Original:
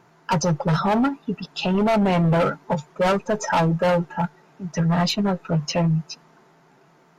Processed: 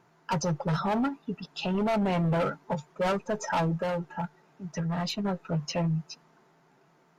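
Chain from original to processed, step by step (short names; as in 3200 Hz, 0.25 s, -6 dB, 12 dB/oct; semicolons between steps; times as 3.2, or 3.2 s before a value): 3.81–5.25 compressor, threshold -20 dBFS, peak gain reduction 4 dB; gain -7.5 dB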